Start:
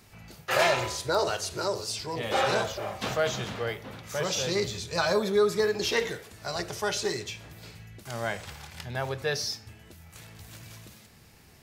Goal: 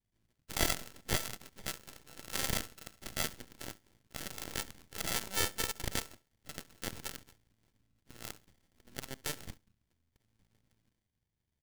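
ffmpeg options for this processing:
-af "acrusher=samples=33:mix=1:aa=0.000001,equalizer=f=560:t=o:w=2.8:g=-14,aeval=exprs='0.211*(cos(1*acos(clip(val(0)/0.211,-1,1)))-cos(1*PI/2))+0.0841*(cos(2*acos(clip(val(0)/0.211,-1,1)))-cos(2*PI/2))+0.00422*(cos(3*acos(clip(val(0)/0.211,-1,1)))-cos(3*PI/2))+0.0188*(cos(6*acos(clip(val(0)/0.211,-1,1)))-cos(6*PI/2))+0.0299*(cos(7*acos(clip(val(0)/0.211,-1,1)))-cos(7*PI/2))':c=same,bandreject=f=1.2k:w=20,aecho=1:1:69|138:0.0794|0.0151"

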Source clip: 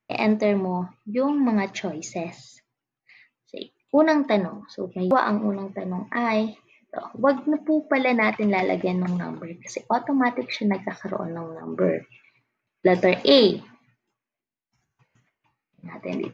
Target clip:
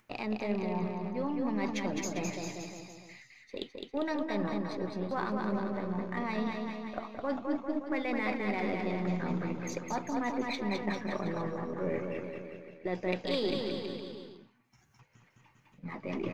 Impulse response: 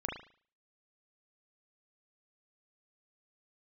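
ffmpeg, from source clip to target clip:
-af "aeval=exprs='if(lt(val(0),0),0.708*val(0),val(0))':c=same,bandreject=f=660:w=13,areverse,acompressor=threshold=-33dB:ratio=4,areverse,aecho=1:1:210|399|569.1|722.2|860:0.631|0.398|0.251|0.158|0.1,acompressor=mode=upward:threshold=-54dB:ratio=2.5"

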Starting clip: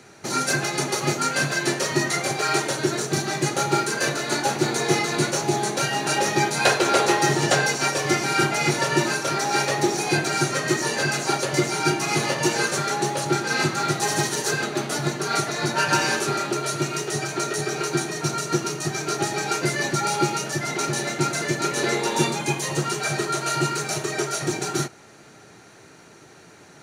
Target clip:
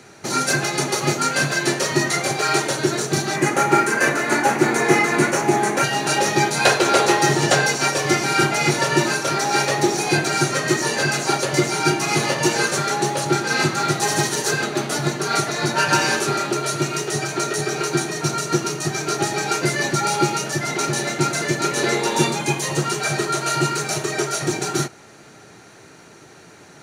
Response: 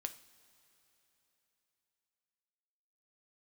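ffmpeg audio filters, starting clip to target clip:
-filter_complex "[0:a]asettb=1/sr,asplit=3[a][b][c];[a]atrim=end=3.364[d];[b]atrim=start=3.36:end=5.84,asetpts=PTS-STARTPTS,afade=t=in:d=0.004:c=qsin,afade=t=out:st=2.476:d=0.004:c=qsin,equalizer=f=125:t=o:w=1:g=-4,equalizer=f=250:t=o:w=1:g=5,equalizer=f=1k:t=o:w=1:g=3,equalizer=f=2k:t=o:w=1:g=7,equalizer=f=4k:t=o:w=1:g=-9[e];[c]atrim=start=5.836[f];[d][e]acrossfade=d=0.004:c1=hsin:c2=qsin[g];[g][f]acrossfade=d=0.004:c1=qsin:c2=hsin,volume=3dB"

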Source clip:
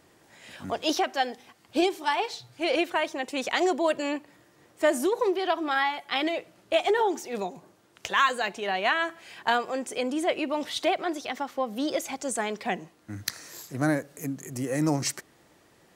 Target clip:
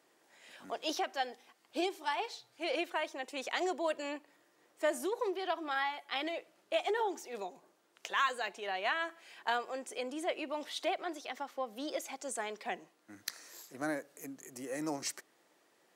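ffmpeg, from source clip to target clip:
-af "highpass=330,volume=-8.5dB"

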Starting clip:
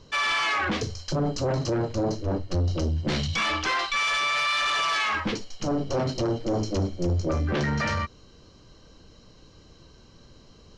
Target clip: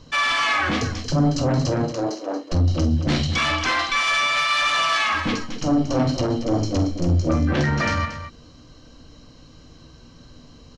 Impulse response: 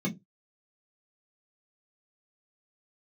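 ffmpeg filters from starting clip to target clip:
-filter_complex "[0:a]asettb=1/sr,asplit=3[a][b][c];[a]atrim=end=1.874[d];[b]atrim=start=1.87:end=2.52,asetpts=PTS-STARTPTS,afade=t=in:d=0.004:c=qsin,afade=t=out:st=0.646:d=0.004:c=qsin,highpass=f=330:w=0.5412,highpass=f=330:w=1.3066[e];[c]atrim=start=2.516[f];[d][e]acrossfade=d=0.004:c1=hsin:c2=qsin[g];[g][f]acrossfade=d=0.004:c1=qsin:c2=hsin,aecho=1:1:46.65|230.3:0.282|0.282,asplit=2[h][i];[1:a]atrim=start_sample=2205,asetrate=57330,aresample=44100[j];[i][j]afir=irnorm=-1:irlink=0,volume=-19dB[k];[h][k]amix=inputs=2:normalize=0,volume=4dB"

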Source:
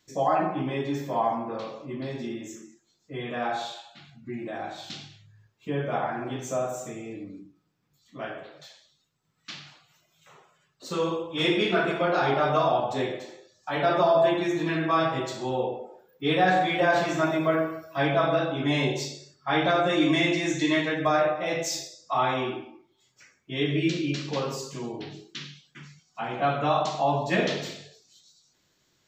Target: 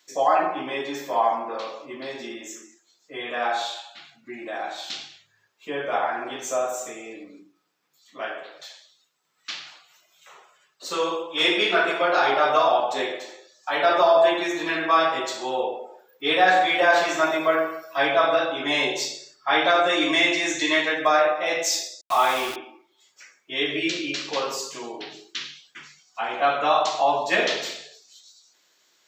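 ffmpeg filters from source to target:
-filter_complex "[0:a]highpass=340,asettb=1/sr,asplit=3[a][b][c];[a]atrim=end=22.014[d];[b]atrim=start=22.01:end=22.56,asetpts=PTS-STARTPTS,afade=t=in:d=0.004:c=qsin,afade=t=out:st=0.546:d=0.004:c=qsin,aeval=exprs='val(0)*gte(abs(val(0)),0.0178)':c=same[e];[c]atrim=start=22.556[f];[d][e]acrossfade=d=0.004:c1=hsin:c2=qsin[g];[g][f]acrossfade=d=0.004:c1=qsin:c2=hsin,lowshelf=f=460:g=-9,volume=7dB"

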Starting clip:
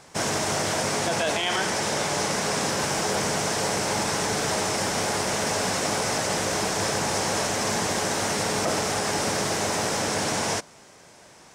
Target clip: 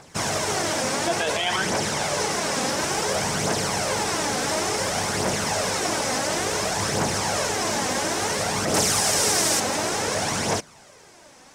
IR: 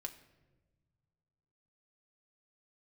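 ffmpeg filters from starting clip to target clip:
-filter_complex "[0:a]asettb=1/sr,asplit=3[a][b][c];[a]atrim=end=8.744[d];[b]atrim=start=8.74:end=9.6,asetpts=PTS-STARTPTS,afade=t=in:d=0.004:c=qsin,afade=t=out:st=0.856:d=0.004:c=qsin,highshelf=f=4.5k:g=11.5[e];[c]atrim=start=9.596[f];[d][e]acrossfade=d=0.004:c1=hsin:c2=qsin[g];[g][f]acrossfade=d=0.004:c1=qsin:c2=hsin,aphaser=in_gain=1:out_gain=1:delay=4:decay=0.45:speed=0.57:type=triangular"

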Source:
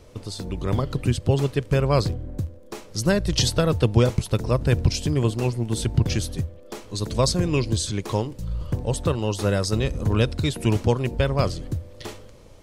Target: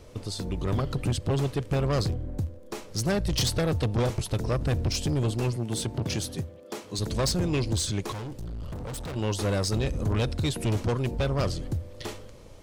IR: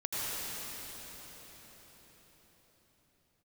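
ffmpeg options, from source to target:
-filter_complex "[0:a]asoftclip=type=tanh:threshold=-21dB,asettb=1/sr,asplit=3[a][b][c];[a]atrim=end=5.564[d];[b]atrim=start=5.56:end=6.99,asetpts=PTS-STARTPTS,afade=t=in:d=0.004:c=qsin,afade=t=out:st=1.426:d=0.004:c=qsin,highpass=120[e];[c]atrim=start=6.986[f];[d][e]acrossfade=d=0.004:c1=hsin:c2=qsin[g];[g][f]acrossfade=d=0.004:c1=qsin:c2=hsin,asettb=1/sr,asplit=3[h][i][j];[h]atrim=end=8.124[k];[i]atrim=start=8.12:end=9.16,asetpts=PTS-STARTPTS,afade=t=in:d=0.004:c=qsin,afade=t=out:st=1.036:d=0.004:c=qsin,volume=33.5dB,asoftclip=hard,volume=-33.5dB[l];[j]atrim=start=9.156[m];[k][l]acrossfade=d=0.004:c1=hsin:c2=qsin[n];[n][m]acrossfade=d=0.004:c1=qsin:c2=hsin"

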